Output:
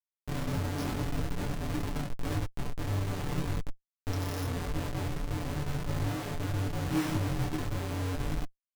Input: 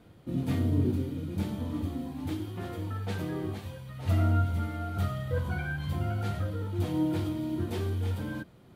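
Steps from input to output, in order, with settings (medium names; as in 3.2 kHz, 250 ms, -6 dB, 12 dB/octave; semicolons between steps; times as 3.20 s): tape spacing loss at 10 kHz 26 dB; careless resampling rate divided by 8×, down filtered, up zero stuff; 4.54–6.69 s: FFT filter 130 Hz 0 dB, 470 Hz -26 dB, 680 Hz +10 dB, 7.3 kHz -1 dB; reverberation RT60 0.85 s, pre-delay 4 ms, DRR 6.5 dB; Schmitt trigger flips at -13 dBFS; comb 6.9 ms, depth 56%; detune thickener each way 29 cents; trim -6.5 dB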